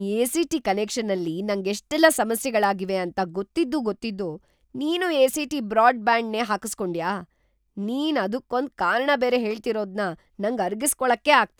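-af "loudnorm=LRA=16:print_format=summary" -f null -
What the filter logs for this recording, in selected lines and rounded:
Input Integrated:    -23.6 LUFS
Input True Peak:      -3.4 dBTP
Input LRA:             2.4 LU
Input Threshold:     -33.7 LUFS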